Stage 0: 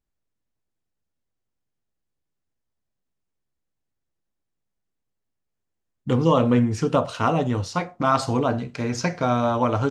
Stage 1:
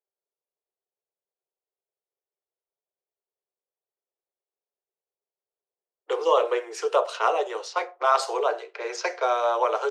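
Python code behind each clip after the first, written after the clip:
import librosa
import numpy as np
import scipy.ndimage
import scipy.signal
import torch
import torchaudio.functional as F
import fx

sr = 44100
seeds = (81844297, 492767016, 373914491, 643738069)

y = fx.env_lowpass(x, sr, base_hz=710.0, full_db=-19.5)
y = scipy.signal.sosfilt(scipy.signal.butter(16, 370.0, 'highpass', fs=sr, output='sos'), y)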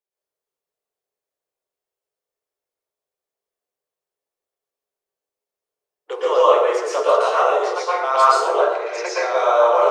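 y = fx.rev_plate(x, sr, seeds[0], rt60_s=1.0, hf_ratio=0.55, predelay_ms=105, drr_db=-8.0)
y = F.gain(torch.from_numpy(y), -2.0).numpy()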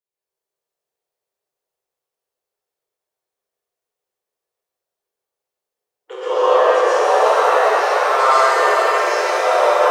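y = fx.rev_shimmer(x, sr, seeds[1], rt60_s=4.0, semitones=7, shimmer_db=-8, drr_db=-7.0)
y = F.gain(torch.from_numpy(y), -5.0).numpy()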